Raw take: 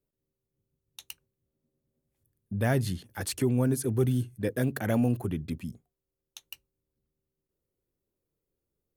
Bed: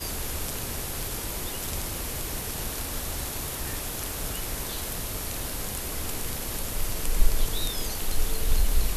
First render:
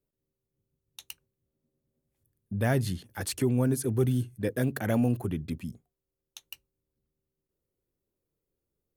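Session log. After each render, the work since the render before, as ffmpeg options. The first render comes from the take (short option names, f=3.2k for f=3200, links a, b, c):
-af anull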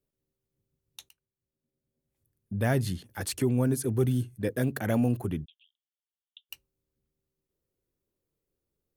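-filter_complex "[0:a]asplit=3[a][b][c];[a]afade=t=out:st=5.44:d=0.02[d];[b]asuperpass=centerf=3200:order=8:qfactor=3.7,afade=t=in:st=5.44:d=0.02,afade=t=out:st=6.49:d=0.02[e];[c]afade=t=in:st=6.49:d=0.02[f];[d][e][f]amix=inputs=3:normalize=0,asplit=2[g][h];[g]atrim=end=1.09,asetpts=PTS-STARTPTS,afade=t=out:st=1.086:d=0.004:c=hsin:silence=0.125893[i];[h]atrim=start=1.09,asetpts=PTS-STARTPTS,afade=t=in:d=1.49:silence=0.125893[j];[i][j]concat=n=2:v=0:a=1"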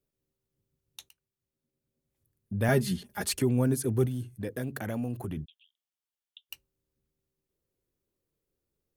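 -filter_complex "[0:a]asettb=1/sr,asplit=3[a][b][c];[a]atrim=end=2.684[d];[b]atrim=start=2.68:end=3.39,asetpts=PTS-STARTPTS,afade=t=in:d=0.004:c=qsin,afade=t=out:st=0.706:d=0.004:c=qsin,aecho=1:1:4.9:0.96,atrim=end_sample=31311[e];[c]atrim=start=3.386[f];[d][e]acrossfade=d=0.004:c1=hsin:c2=qsin[g];[g][f]acrossfade=d=0.004:c1=qsin:c2=hsin,asettb=1/sr,asplit=3[h][i][j];[h]atrim=end=4.064[k];[i]atrim=start=4.06:end=5.37,asetpts=PTS-STARTPTS,afade=t=in:d=0.004:c=qsin,afade=t=out:st=1.306:d=0.004:c=qsin,acompressor=threshold=-32dB:ratio=2.5:attack=3.2:release=140:knee=1:detection=peak[l];[j]atrim=start=5.366[m];[k][l]acrossfade=d=0.004:c1=hsin:c2=qsin[n];[n][m]acrossfade=d=0.004:c1=qsin:c2=hsin"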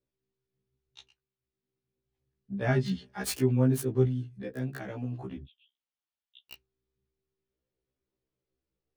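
-filter_complex "[0:a]acrossover=split=150|1000|5800[a][b][c][d];[d]acrusher=bits=4:mix=0:aa=0.000001[e];[a][b][c][e]amix=inputs=4:normalize=0,afftfilt=real='re*1.73*eq(mod(b,3),0)':imag='im*1.73*eq(mod(b,3),0)':win_size=2048:overlap=0.75"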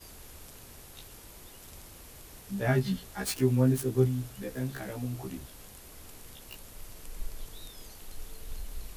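-filter_complex "[1:a]volume=-17dB[a];[0:a][a]amix=inputs=2:normalize=0"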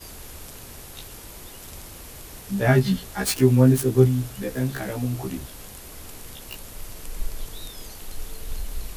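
-af "volume=8.5dB"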